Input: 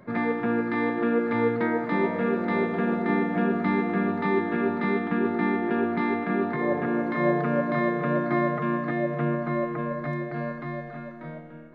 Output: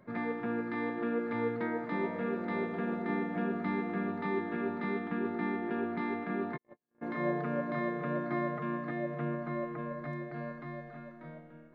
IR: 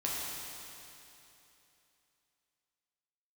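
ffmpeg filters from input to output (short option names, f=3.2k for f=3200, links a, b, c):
-filter_complex "[0:a]asplit=3[a][b][c];[a]afade=t=out:st=6.56:d=0.02[d];[b]agate=range=-58dB:threshold=-19dB:ratio=16:detection=peak,afade=t=in:st=6.56:d=0.02,afade=t=out:st=7.01:d=0.02[e];[c]afade=t=in:st=7.01:d=0.02[f];[d][e][f]amix=inputs=3:normalize=0,volume=-9dB"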